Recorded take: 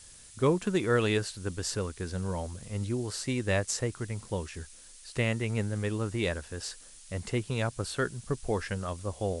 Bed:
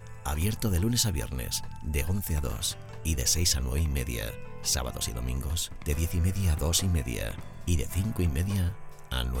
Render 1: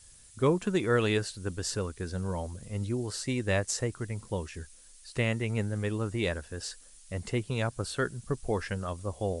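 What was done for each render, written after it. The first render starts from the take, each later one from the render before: denoiser 6 dB, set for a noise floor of -52 dBFS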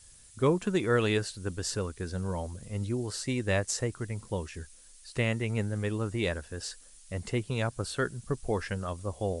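nothing audible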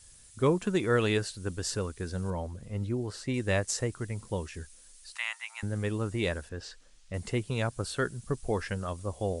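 2.3–3.34 high shelf 4500 Hz -11.5 dB; 5.15–5.63 steep high-pass 840 Hz 48 dB/oct; 6.49–7.14 air absorption 120 m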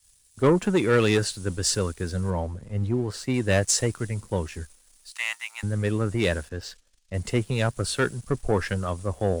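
sample leveller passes 2; three-band expander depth 40%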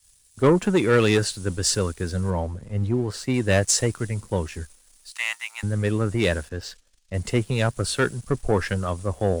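gain +2 dB

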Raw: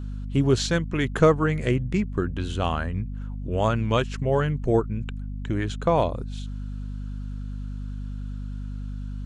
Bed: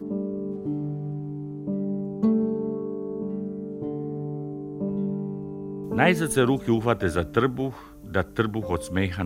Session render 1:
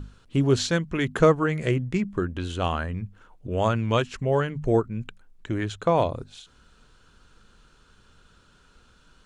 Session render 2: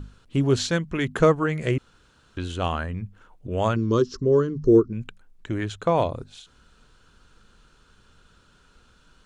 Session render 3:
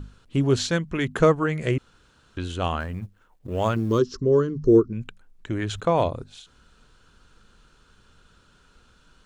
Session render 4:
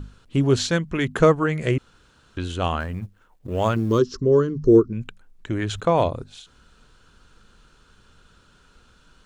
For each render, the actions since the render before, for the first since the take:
notches 50/100/150/200/250 Hz
1.78–2.37 room tone; 3.76–4.93 EQ curve 170 Hz 0 dB, 380 Hz +11 dB, 540 Hz -3 dB, 760 Hz -21 dB, 1100 Hz 0 dB, 2400 Hz -21 dB, 3700 Hz -4 dB, 5300 Hz +10 dB, 8500 Hz -13 dB
2.8–3.99 G.711 law mismatch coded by A; 5.57–6.09 sustainer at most 70 dB/s
gain +2 dB

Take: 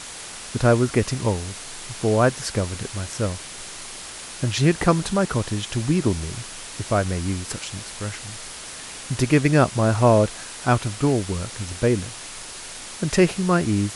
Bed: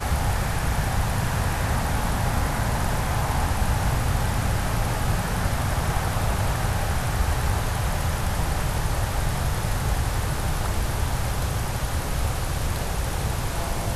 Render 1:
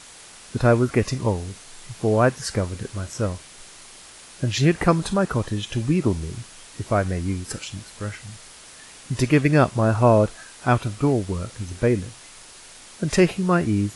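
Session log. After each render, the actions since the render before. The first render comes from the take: noise print and reduce 8 dB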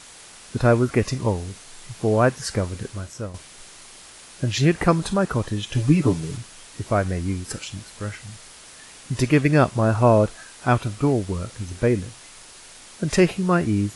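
2.84–3.34 fade out, to -10.5 dB; 5.74–6.37 comb 6.9 ms, depth 89%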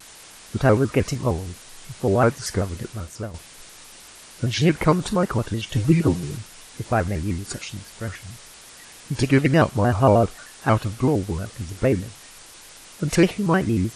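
shaped vibrato square 6.5 Hz, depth 160 cents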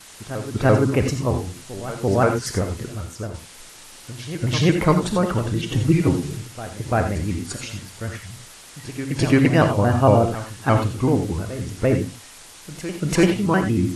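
reverse echo 0.341 s -13.5 dB; non-linear reverb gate 0.11 s rising, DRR 6 dB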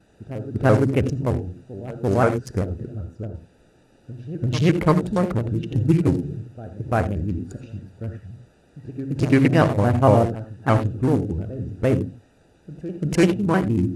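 Wiener smoothing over 41 samples; HPF 40 Hz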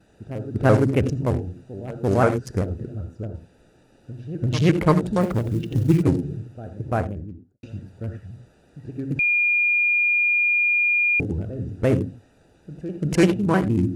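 5.21–6.03 short-mantissa float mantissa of 4-bit; 6.67–7.63 studio fade out; 9.19–11.2 bleep 2420 Hz -16.5 dBFS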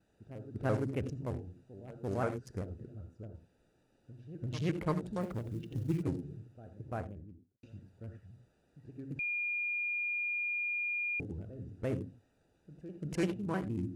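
gain -15.5 dB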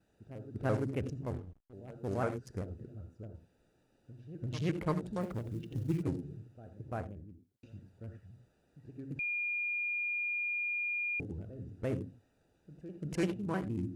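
1.23–1.73 backlash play -45.5 dBFS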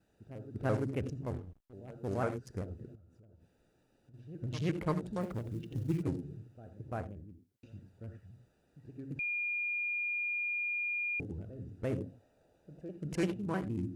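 2.95–4.14 compressor 16:1, threshold -56 dBFS; 11.98–12.91 bell 600 Hz +9.5 dB 0.83 oct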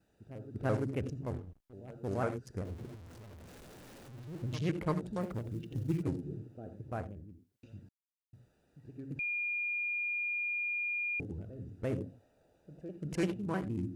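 2.65–4.56 zero-crossing step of -47.5 dBFS; 6.26–6.76 bell 340 Hz +9.5 dB 2.1 oct; 7.89–8.33 mute

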